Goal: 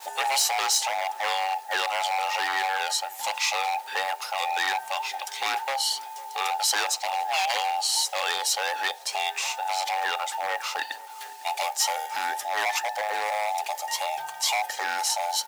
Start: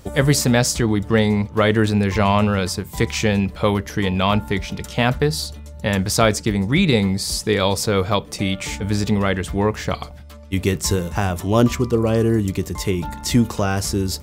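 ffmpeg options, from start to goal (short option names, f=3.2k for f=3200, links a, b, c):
-filter_complex "[0:a]afftfilt=real='real(if(between(b,1,1008),(2*floor((b-1)/48)+1)*48-b,b),0)':imag='imag(if(between(b,1,1008),(2*floor((b-1)/48)+1)*48-b,b),0)*if(between(b,1,1008),-1,1)':win_size=2048:overlap=0.75,asetrate=40517,aresample=44100,asplit=2[a][b];[b]alimiter=limit=-13.5dB:level=0:latency=1:release=28,volume=1dB[c];[a][c]amix=inputs=2:normalize=0,aeval=exprs='0.398*(abs(mod(val(0)/0.398+3,4)-2)-1)':c=same,acrusher=bits=6:mix=0:aa=0.000001,asplit=2[d][e];[e]adelay=504,lowpass=f=1.6k:p=1,volume=-21dB,asplit=2[f][g];[g]adelay=504,lowpass=f=1.6k:p=1,volume=0.34,asplit=2[h][i];[i]adelay=504,lowpass=f=1.6k:p=1,volume=0.34[j];[f][h][j]amix=inputs=3:normalize=0[k];[d][k]amix=inputs=2:normalize=0,acompressor=mode=upward:threshold=-21dB:ratio=2.5,highpass=1.1k,agate=range=-42dB:threshold=-34dB:ratio=16:detection=peak,volume=-6.5dB"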